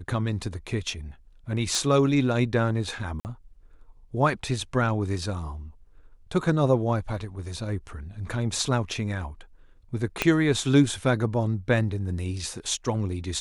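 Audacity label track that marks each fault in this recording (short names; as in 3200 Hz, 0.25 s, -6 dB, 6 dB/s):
1.750000	1.750000	pop
3.200000	3.250000	gap 49 ms
10.220000	10.220000	pop -7 dBFS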